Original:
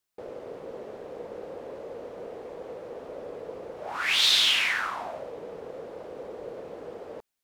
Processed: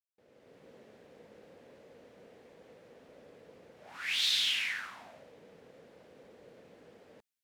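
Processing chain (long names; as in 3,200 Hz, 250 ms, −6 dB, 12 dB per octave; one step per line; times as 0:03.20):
fade in at the beginning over 0.66 s
high-pass filter 120 Hz 6 dB per octave
flat-topped bell 650 Hz −9.5 dB 2.3 octaves
level −8 dB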